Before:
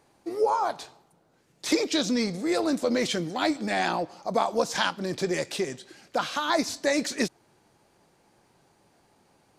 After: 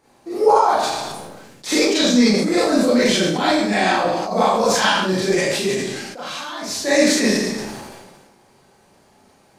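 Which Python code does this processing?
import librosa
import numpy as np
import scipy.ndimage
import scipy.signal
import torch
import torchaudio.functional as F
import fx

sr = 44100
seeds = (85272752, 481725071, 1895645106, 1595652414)

y = fx.level_steps(x, sr, step_db=19, at=(5.61, 6.65), fade=0.02)
y = fx.rev_schroeder(y, sr, rt60_s=0.61, comb_ms=29, drr_db=-8.5)
y = fx.sustainer(y, sr, db_per_s=36.0)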